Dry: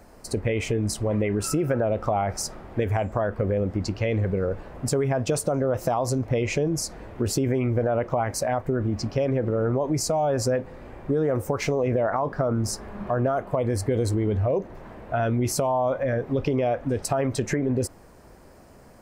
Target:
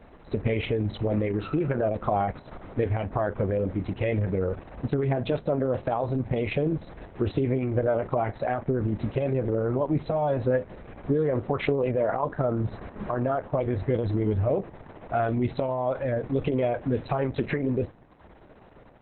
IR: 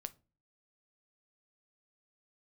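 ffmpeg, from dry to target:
-filter_complex "[0:a]aeval=exprs='0.316*(cos(1*acos(clip(val(0)/0.316,-1,1)))-cos(1*PI/2))+0.00282*(cos(5*acos(clip(val(0)/0.316,-1,1)))-cos(5*PI/2))':channel_layout=same,asplit=2[link_01][link_02];[1:a]atrim=start_sample=2205[link_03];[link_02][link_03]afir=irnorm=-1:irlink=0,volume=3dB[link_04];[link_01][link_04]amix=inputs=2:normalize=0,volume=-6dB" -ar 48000 -c:a libopus -b:a 6k

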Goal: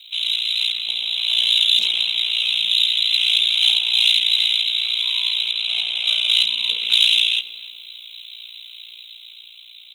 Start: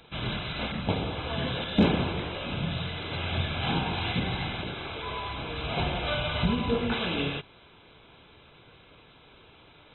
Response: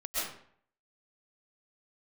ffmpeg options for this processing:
-filter_complex "[0:a]alimiter=limit=-19dB:level=0:latency=1:release=235,asettb=1/sr,asplit=3[link_01][link_02][link_03];[link_01]atrim=end=5.514[link_04];[link_02]atrim=start=5.51:end=6.29,asetpts=PTS-STARTPTS,afade=type=in:duration=0.004:curve=qsin,afade=type=out:start_time=0.776:duration=0.004:curve=qsin,highshelf=frequency=3000:gain=-8.5[link_05];[link_03]atrim=start=6.286[link_06];[link_04][link_05]acrossfade=duration=0.004:curve1=hsin:curve2=qsin[link_07];[link_07][link_06]acrossfade=duration=0.004:curve1=qsin:curve2=hsin,aexciter=amount=11.2:drive=9:freq=2600,aeval=exprs='val(0)*sin(2*PI*29*n/s)':channel_layout=same,aderivative,dynaudnorm=framelen=200:gausssize=11:maxgain=5dB,asplit=2[link_08][link_09];[link_09]adelay=290,lowpass=frequency=1300:poles=1,volume=-13dB,asplit=2[link_10][link_11];[link_11]adelay=290,lowpass=frequency=1300:poles=1,volume=0.38,asplit=2[link_12][link_13];[link_13]adelay=290,lowpass=frequency=1300:poles=1,volume=0.38,asplit=2[link_14][link_15];[link_15]adelay=290,lowpass=frequency=1300:poles=1,volume=0.38[link_16];[link_10][link_12][link_14][link_16]amix=inputs=4:normalize=0[link_17];[link_08][link_17]amix=inputs=2:normalize=0,volume=3dB"

